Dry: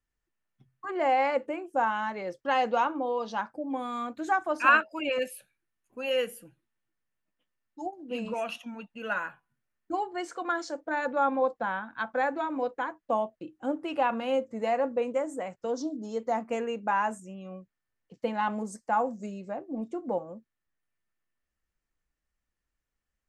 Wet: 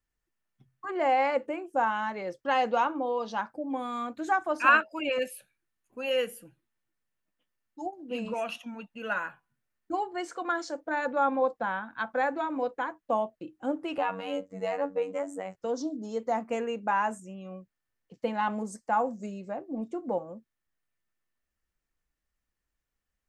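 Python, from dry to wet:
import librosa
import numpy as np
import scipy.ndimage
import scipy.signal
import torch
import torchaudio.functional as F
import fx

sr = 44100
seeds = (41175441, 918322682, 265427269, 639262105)

y = fx.robotise(x, sr, hz=94.4, at=(13.98, 15.55))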